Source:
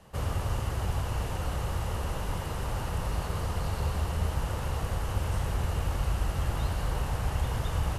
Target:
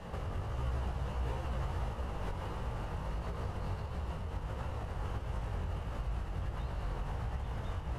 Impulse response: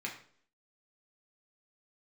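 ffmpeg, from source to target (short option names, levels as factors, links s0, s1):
-filter_complex "[0:a]aemphasis=mode=reproduction:type=75kf,bandreject=f=49.72:t=h:w=4,bandreject=f=99.44:t=h:w=4,bandreject=f=149.16:t=h:w=4,bandreject=f=198.88:t=h:w=4,bandreject=f=248.6:t=h:w=4,bandreject=f=298.32:t=h:w=4,bandreject=f=348.04:t=h:w=4,bandreject=f=397.76:t=h:w=4,bandreject=f=447.48:t=h:w=4,bandreject=f=497.2:t=h:w=4,bandreject=f=546.92:t=h:w=4,bandreject=f=596.64:t=h:w=4,bandreject=f=646.36:t=h:w=4,bandreject=f=696.08:t=h:w=4,bandreject=f=745.8:t=h:w=4,bandreject=f=795.52:t=h:w=4,bandreject=f=845.24:t=h:w=4,bandreject=f=894.96:t=h:w=4,bandreject=f=944.68:t=h:w=4,bandreject=f=994.4:t=h:w=4,bandreject=f=1044.12:t=h:w=4,bandreject=f=1093.84:t=h:w=4,bandreject=f=1143.56:t=h:w=4,bandreject=f=1193.28:t=h:w=4,bandreject=f=1243:t=h:w=4,bandreject=f=1292.72:t=h:w=4,bandreject=f=1342.44:t=h:w=4,bandreject=f=1392.16:t=h:w=4,bandreject=f=1441.88:t=h:w=4,bandreject=f=1491.6:t=h:w=4,bandreject=f=1541.32:t=h:w=4,bandreject=f=1591.04:t=h:w=4,bandreject=f=1640.76:t=h:w=4,bandreject=f=1690.48:t=h:w=4,acompressor=threshold=0.0178:ratio=6,alimiter=level_in=6.68:limit=0.0631:level=0:latency=1:release=455,volume=0.15,flanger=delay=17:depth=4.7:speed=1.5,asettb=1/sr,asplit=3[s0][s1][s2];[s0]atrim=end=0.504[s3];[s1]atrim=start=0.5:end=1.89,asetpts=PTS-STARTPTS,afade=t=in:d=0.004:c=qsin,afade=t=out:st=1.386:d=0.004:c=qsin,asplit=2[s4][s5];[s5]adelay=15,volume=0.75[s6];[s4][s6]amix=inputs=2:normalize=0,atrim=end_sample=61299[s7];[s2]atrim=start=1.886[s8];[s3][s7]acrossfade=d=0.004:c1=hsin:c2=qsin[s9];[s9][s8]acrossfade=d=0.004:c1=qsin:c2=hsin,volume=5.01"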